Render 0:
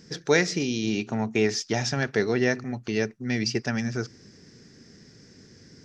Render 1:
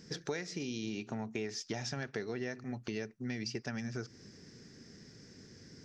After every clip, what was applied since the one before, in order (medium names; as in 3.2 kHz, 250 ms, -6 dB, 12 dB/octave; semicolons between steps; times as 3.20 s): compression 6:1, threshold -32 dBFS, peak gain reduction 16 dB; trim -3.5 dB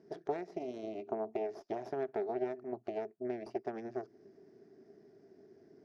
Chebyshev shaper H 4 -7 dB, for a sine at -22.5 dBFS; two resonant band-passes 510 Hz, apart 0.71 oct; trim +7 dB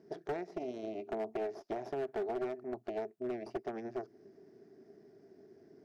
overload inside the chain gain 32 dB; trim +1 dB